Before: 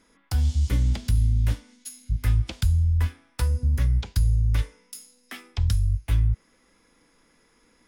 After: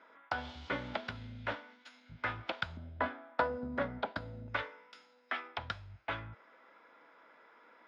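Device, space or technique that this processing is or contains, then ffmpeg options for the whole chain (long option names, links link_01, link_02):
phone earpiece: -filter_complex "[0:a]asettb=1/sr,asplit=3[link_01][link_02][link_03];[link_01]atrim=end=2.774[link_04];[link_02]atrim=start=2.77:end=4.48,asetpts=PTS-STARTPTS,afade=type=in:duration=0.004:curve=qsin,afade=type=out:start_time=1.706:duration=0.004:curve=qsin,equalizer=frequency=250:width_type=o:width=0.67:gain=11,equalizer=frequency=630:width_type=o:width=0.67:gain=8,equalizer=frequency=2500:width_type=o:width=0.67:gain=-5,equalizer=frequency=6300:width_type=o:width=0.67:gain=-8[link_05];[link_03]atrim=start=4.476[link_06];[link_04][link_05]acrossfade=duration=0.004:curve1=hsin:curve2=qsin[link_07];[link_07][link_06]acrossfade=duration=0.004:curve1=qsin:curve2=hsin,highpass=440,equalizer=frequency=630:width_type=q:width=4:gain=9,equalizer=frequency=920:width_type=q:width=4:gain=6,equalizer=frequency=1400:width_type=q:width=4:gain=9,equalizer=frequency=2800:width_type=q:width=4:gain=-3,lowpass=frequency=3300:width=0.5412,lowpass=frequency=3300:width=1.3066,volume=1dB"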